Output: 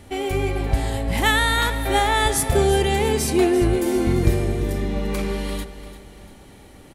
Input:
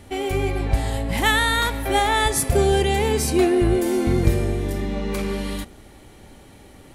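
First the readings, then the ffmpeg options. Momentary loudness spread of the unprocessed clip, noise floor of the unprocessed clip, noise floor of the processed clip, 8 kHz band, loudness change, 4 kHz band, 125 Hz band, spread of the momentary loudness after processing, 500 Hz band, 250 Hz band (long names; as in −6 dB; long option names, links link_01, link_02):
8 LU, −47 dBFS, −46 dBFS, 0.0 dB, 0.0 dB, 0.0 dB, +0.5 dB, 8 LU, 0.0 dB, 0.0 dB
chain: -af "aecho=1:1:344|688|1032|1376:0.211|0.0867|0.0355|0.0146"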